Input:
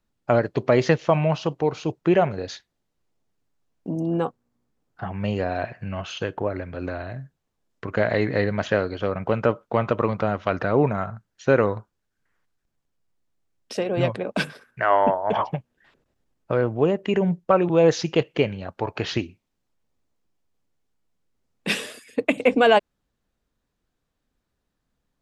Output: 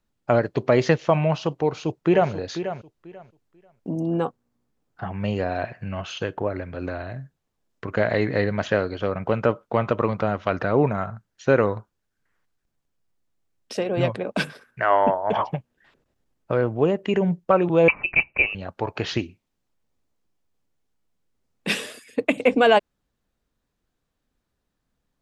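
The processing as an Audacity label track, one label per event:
1.640000	2.320000	echo throw 0.49 s, feedback 20%, level -10.5 dB
17.880000	18.550000	inverted band carrier 2800 Hz

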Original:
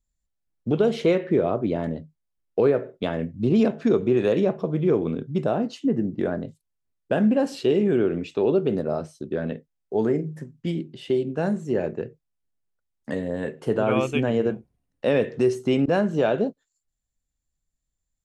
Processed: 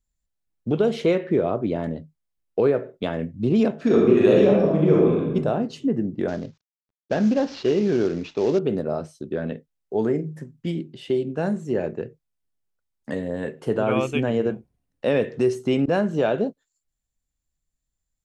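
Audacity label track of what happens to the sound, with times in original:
3.770000	5.340000	reverb throw, RT60 1.1 s, DRR -3.5 dB
6.280000	8.590000	CVSD 32 kbps

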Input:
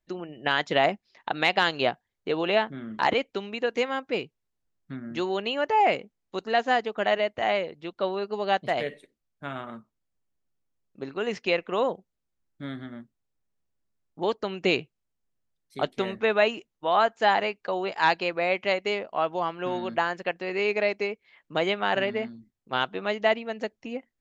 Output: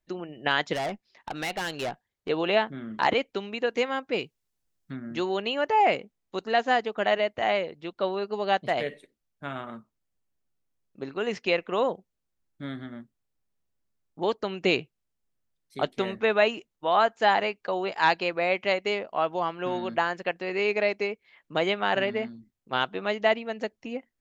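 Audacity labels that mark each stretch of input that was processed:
0.730000	2.290000	tube stage drive 27 dB, bias 0.3
4.180000	4.930000	high shelf 3400 Hz +7.5 dB

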